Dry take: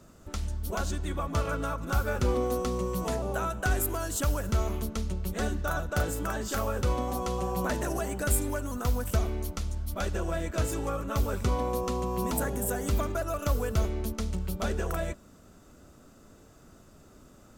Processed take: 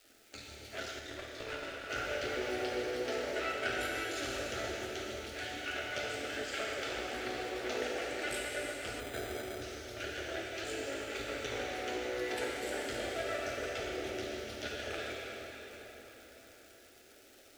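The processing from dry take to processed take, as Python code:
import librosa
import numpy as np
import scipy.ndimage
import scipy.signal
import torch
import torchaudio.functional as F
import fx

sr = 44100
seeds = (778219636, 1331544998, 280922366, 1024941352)

y = fx.spec_dropout(x, sr, seeds[0], share_pct=33)
y = np.maximum(y, 0.0)
y = fx.bandpass_edges(y, sr, low_hz=310.0, high_hz=3200.0)
y = fx.peak_eq(y, sr, hz=440.0, db=-12.5, octaves=2.3)
y = fx.dmg_crackle(y, sr, seeds[1], per_s=210.0, level_db=-55.0)
y = fx.fixed_phaser(y, sr, hz=430.0, stages=4)
y = fx.rev_plate(y, sr, seeds[2], rt60_s=4.9, hf_ratio=0.75, predelay_ms=0, drr_db=-5.0)
y = fx.tube_stage(y, sr, drive_db=39.0, bias=0.7, at=(0.99, 1.9))
y = fx.resample_bad(y, sr, factor=8, down='filtered', up='hold', at=(9.0, 9.62))
y = y * librosa.db_to_amplitude(8.0)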